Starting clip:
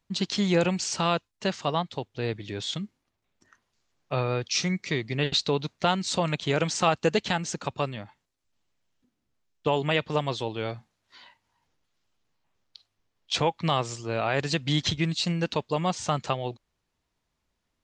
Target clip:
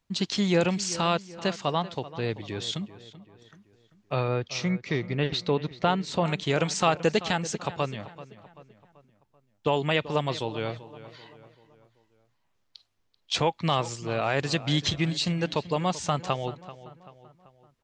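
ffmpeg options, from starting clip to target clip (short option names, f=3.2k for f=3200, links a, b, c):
-filter_complex "[0:a]asettb=1/sr,asplit=3[a][b][c];[a]atrim=end=4.284[d];[b]atrim=start=4.28:end=6.26,asetpts=PTS-STARTPTS,afade=t=in:d=0.004:c=qsin,afade=t=out:st=1.976:d=0.004:c=qsin,aemphasis=mode=reproduction:type=75fm[e];[c]atrim=start=6.256[f];[d][e]acrossfade=d=0.004:c1=hsin:c2=qsin[g];[g][f]acrossfade=d=0.004:c1=qsin:c2=hsin,asplit=2[h][i];[i]adelay=386,lowpass=f=3.2k:p=1,volume=-15.5dB,asplit=2[j][k];[k]adelay=386,lowpass=f=3.2k:p=1,volume=0.48,asplit=2[l][m];[m]adelay=386,lowpass=f=3.2k:p=1,volume=0.48,asplit=2[n][o];[o]adelay=386,lowpass=f=3.2k:p=1,volume=0.48[p];[j][l][n][p]amix=inputs=4:normalize=0[q];[h][q]amix=inputs=2:normalize=0"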